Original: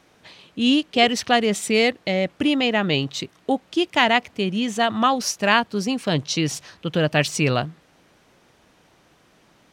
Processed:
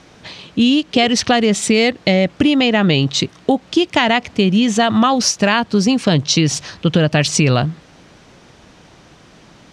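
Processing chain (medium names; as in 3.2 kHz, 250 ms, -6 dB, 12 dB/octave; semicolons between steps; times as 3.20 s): treble shelf 4.8 kHz -5 dB; in parallel at +1 dB: peak limiter -12.5 dBFS, peak gain reduction 9 dB; on the sum: tone controls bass +5 dB, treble +8 dB; compression, threshold -14 dBFS, peak gain reduction 7.5 dB; low-pass 6.6 kHz 12 dB/octave; trim +4 dB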